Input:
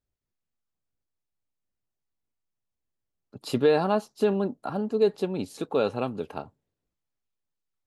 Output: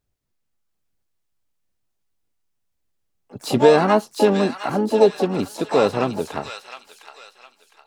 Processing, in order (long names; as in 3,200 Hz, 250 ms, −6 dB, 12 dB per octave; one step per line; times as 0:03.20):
delay with a high-pass on its return 709 ms, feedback 34%, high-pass 1,600 Hz, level −4 dB
pitch-shifted copies added +4 semitones −15 dB, +7 semitones −12 dB, +12 semitones −11 dB
level +7 dB